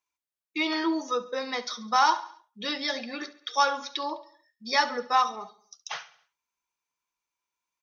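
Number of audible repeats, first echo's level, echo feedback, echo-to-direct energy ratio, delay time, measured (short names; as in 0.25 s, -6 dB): 3, -18.0 dB, 52%, -16.5 dB, 69 ms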